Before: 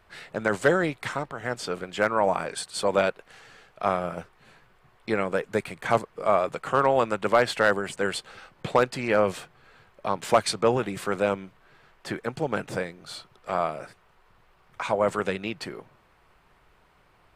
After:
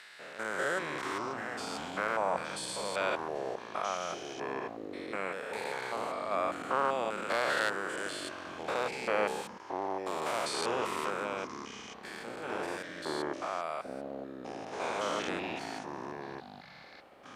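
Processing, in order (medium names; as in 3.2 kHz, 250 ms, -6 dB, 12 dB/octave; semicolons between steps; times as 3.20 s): spectrogram pixelated in time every 200 ms; high-pass 1.2 kHz 6 dB/octave; ever faster or slower copies 216 ms, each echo -6 st, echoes 3, each echo -6 dB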